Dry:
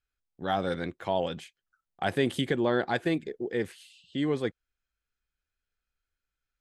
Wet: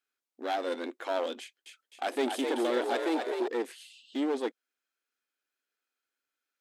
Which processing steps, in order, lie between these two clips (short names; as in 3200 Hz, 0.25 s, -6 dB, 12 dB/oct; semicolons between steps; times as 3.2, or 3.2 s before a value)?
dynamic EQ 1600 Hz, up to -5 dB, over -41 dBFS, Q 0.83; one-sided clip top -33 dBFS; brick-wall FIR high-pass 230 Hz; 1.4–3.48 frequency-shifting echo 0.258 s, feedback 53%, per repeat +63 Hz, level -5 dB; gain +2 dB